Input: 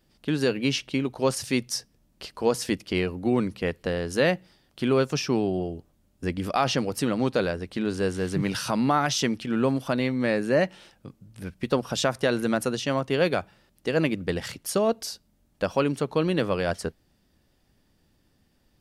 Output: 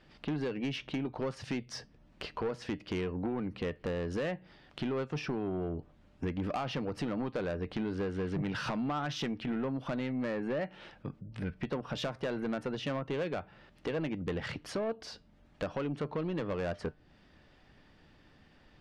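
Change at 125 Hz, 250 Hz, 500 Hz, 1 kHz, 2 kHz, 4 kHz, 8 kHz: -7.5, -8.5, -10.0, -10.5, -10.5, -11.5, -19.0 dB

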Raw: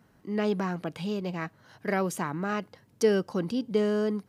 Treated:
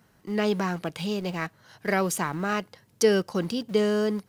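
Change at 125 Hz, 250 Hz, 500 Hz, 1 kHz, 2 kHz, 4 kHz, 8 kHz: +2.0, +1.5, +2.5, +3.5, +5.0, +7.0, +8.5 dB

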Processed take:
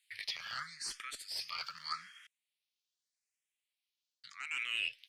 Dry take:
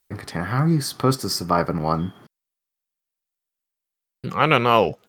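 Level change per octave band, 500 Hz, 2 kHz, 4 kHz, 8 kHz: under -40 dB, -11.5 dB, -9.5 dB, -13.0 dB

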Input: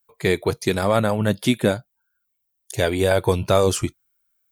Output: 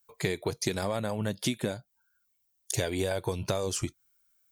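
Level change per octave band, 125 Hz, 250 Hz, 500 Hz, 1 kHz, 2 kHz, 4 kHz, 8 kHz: -10.0, -11.0, -12.0, -13.0, -10.5, -7.5, -3.5 dB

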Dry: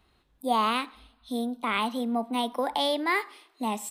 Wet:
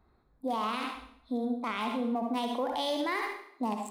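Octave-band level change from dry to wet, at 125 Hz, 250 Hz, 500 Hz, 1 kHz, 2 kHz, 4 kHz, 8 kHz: n/a, -2.0 dB, -3.0 dB, -5.0 dB, -6.0 dB, -6.5 dB, -9.0 dB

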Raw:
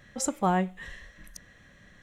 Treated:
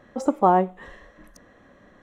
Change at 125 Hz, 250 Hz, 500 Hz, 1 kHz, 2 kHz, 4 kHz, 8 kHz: +0.5 dB, +4.5 dB, +9.5 dB, +9.0 dB, -1.0 dB, n/a, under -10 dB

